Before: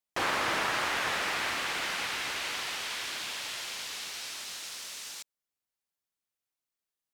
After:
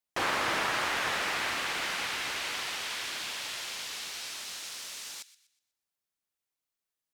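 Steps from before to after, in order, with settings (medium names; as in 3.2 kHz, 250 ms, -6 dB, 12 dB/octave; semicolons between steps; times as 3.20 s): feedback echo behind a high-pass 122 ms, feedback 35%, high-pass 1.9 kHz, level -16 dB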